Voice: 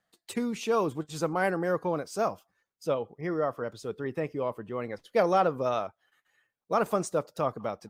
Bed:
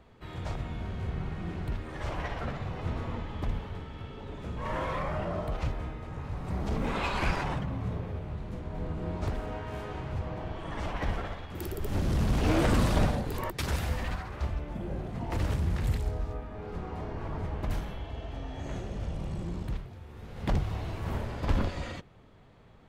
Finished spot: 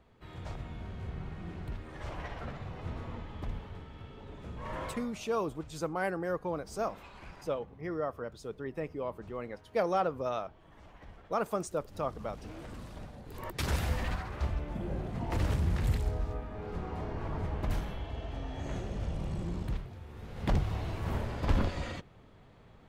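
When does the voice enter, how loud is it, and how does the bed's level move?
4.60 s, -5.5 dB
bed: 4.87 s -6 dB
5.13 s -20.5 dB
13.1 s -20.5 dB
13.62 s -0.5 dB

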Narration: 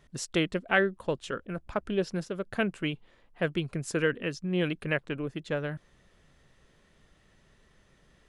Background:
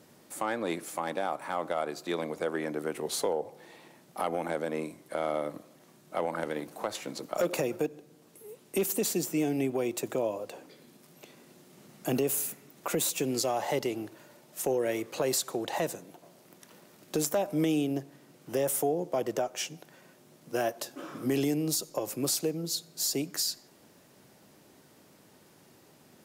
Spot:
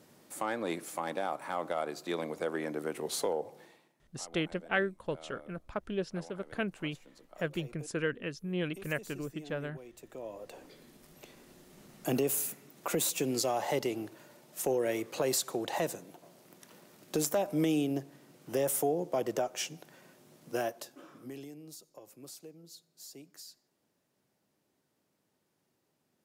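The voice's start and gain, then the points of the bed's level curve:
4.00 s, -5.5 dB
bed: 3.61 s -2.5 dB
3.95 s -20 dB
9.96 s -20 dB
10.66 s -1.5 dB
20.5 s -1.5 dB
21.52 s -19.5 dB

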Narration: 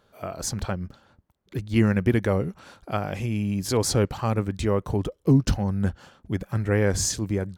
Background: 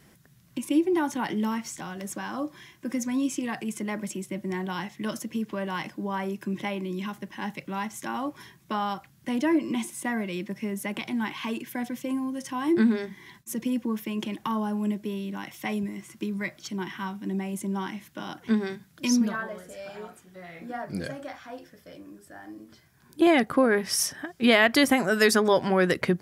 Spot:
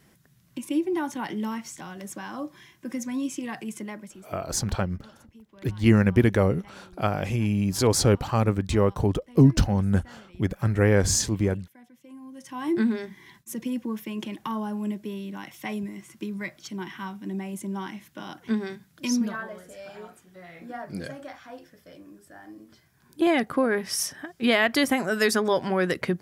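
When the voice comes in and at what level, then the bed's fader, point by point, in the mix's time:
4.10 s, +2.0 dB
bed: 3.79 s -2.5 dB
4.49 s -21 dB
11.97 s -21 dB
12.64 s -2 dB

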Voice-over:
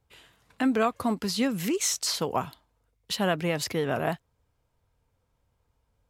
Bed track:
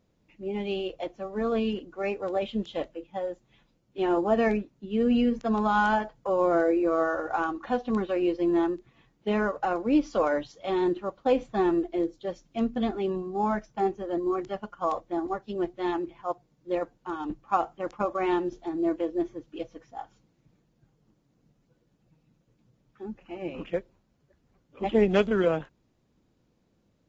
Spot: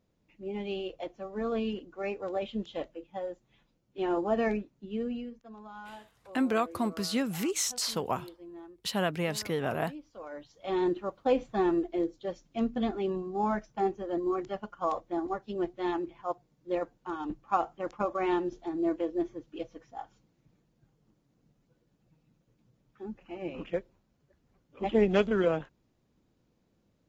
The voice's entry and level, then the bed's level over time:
5.75 s, -3.5 dB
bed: 4.89 s -4.5 dB
5.42 s -22.5 dB
10.13 s -22.5 dB
10.75 s -2.5 dB

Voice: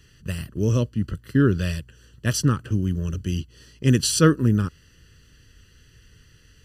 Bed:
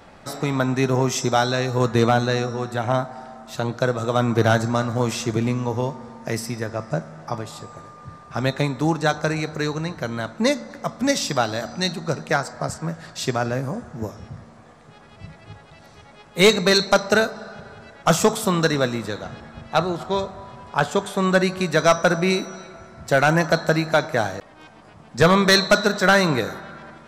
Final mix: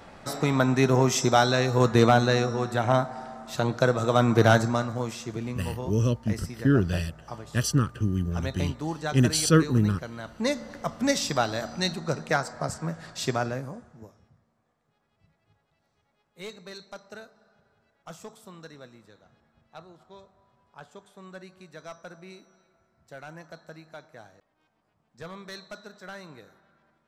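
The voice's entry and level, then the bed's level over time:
5.30 s, -3.0 dB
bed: 4.56 s -1 dB
5.16 s -11 dB
10.22 s -11 dB
10.67 s -4 dB
13.39 s -4 dB
14.4 s -26 dB

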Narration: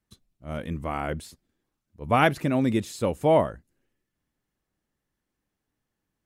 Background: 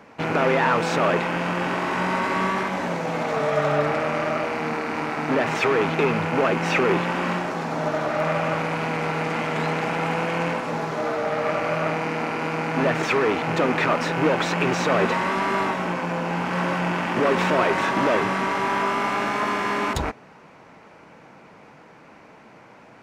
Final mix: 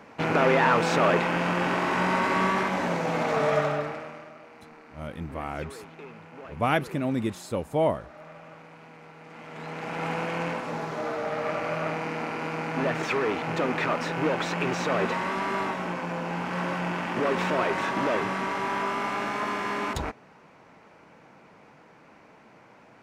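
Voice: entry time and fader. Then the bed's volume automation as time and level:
4.50 s, -4.0 dB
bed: 3.54 s -1 dB
4.34 s -23 dB
9.19 s -23 dB
10.06 s -5.5 dB

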